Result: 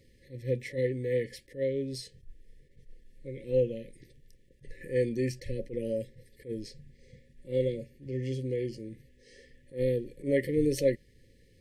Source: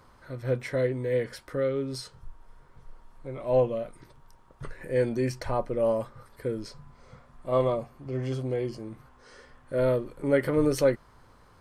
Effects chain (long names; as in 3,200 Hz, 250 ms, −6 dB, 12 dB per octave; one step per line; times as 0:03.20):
brick-wall band-stop 560–1,700 Hz
level that may rise only so fast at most 240 dB per second
level −2.5 dB